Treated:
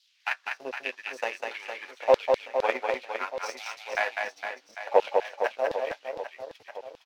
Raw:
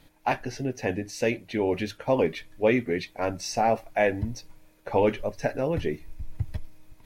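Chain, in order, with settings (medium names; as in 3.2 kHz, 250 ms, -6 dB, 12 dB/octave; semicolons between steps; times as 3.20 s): high-pass 150 Hz 12 dB/octave; hum notches 60/120/180/240/300/360/420/480/540 Hz; transient shaper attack +5 dB, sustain -9 dB; flange 0.89 Hz, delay 8.9 ms, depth 4 ms, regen -48%; band noise 750–5600 Hz -57 dBFS; power-law waveshaper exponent 1.4; LFO high-pass saw down 1.4 Hz 490–4000 Hz; on a send: reverse bouncing-ball echo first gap 200 ms, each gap 1.3×, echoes 5; on the sum: trim +3.5 dB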